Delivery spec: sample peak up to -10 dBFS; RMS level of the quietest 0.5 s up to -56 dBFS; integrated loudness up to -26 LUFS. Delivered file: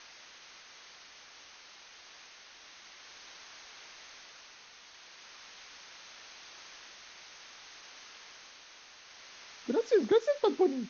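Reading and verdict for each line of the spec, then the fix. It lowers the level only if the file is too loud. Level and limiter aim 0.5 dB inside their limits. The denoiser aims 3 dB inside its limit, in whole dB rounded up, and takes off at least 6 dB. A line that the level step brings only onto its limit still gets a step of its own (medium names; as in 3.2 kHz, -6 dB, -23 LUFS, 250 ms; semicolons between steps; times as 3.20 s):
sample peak -15.5 dBFS: pass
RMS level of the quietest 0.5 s -54 dBFS: fail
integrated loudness -29.0 LUFS: pass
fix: noise reduction 6 dB, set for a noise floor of -54 dBFS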